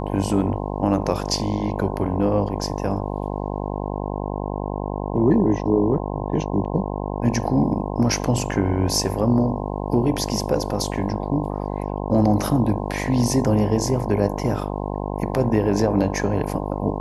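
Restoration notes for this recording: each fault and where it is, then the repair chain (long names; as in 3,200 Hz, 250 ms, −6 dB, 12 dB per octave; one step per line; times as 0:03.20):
mains buzz 50 Hz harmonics 21 −27 dBFS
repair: hum removal 50 Hz, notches 21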